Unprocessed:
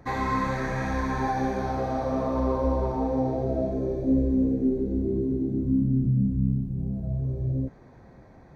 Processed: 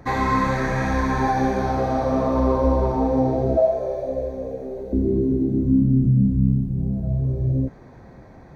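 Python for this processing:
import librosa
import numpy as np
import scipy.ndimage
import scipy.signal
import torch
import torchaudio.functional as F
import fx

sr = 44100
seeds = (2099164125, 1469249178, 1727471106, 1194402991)

y = fx.low_shelf_res(x, sr, hz=420.0, db=-13.0, q=3.0, at=(3.57, 4.93))
y = y * librosa.db_to_amplitude(6.0)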